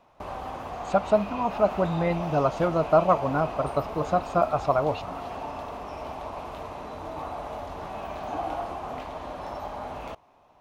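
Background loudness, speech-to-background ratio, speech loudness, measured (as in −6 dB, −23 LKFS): −35.5 LKFS, 10.0 dB, −25.5 LKFS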